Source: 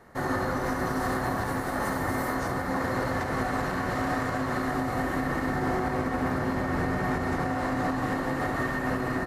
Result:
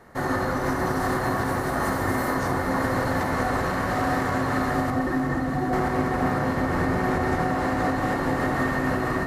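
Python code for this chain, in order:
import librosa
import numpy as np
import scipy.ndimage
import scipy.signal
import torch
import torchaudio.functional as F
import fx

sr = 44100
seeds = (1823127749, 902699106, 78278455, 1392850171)

y = fx.spec_expand(x, sr, power=2.1, at=(4.9, 5.73))
y = fx.echo_alternate(y, sr, ms=488, hz=1300.0, feedback_pct=75, wet_db=-6)
y = y * 10.0 ** (3.0 / 20.0)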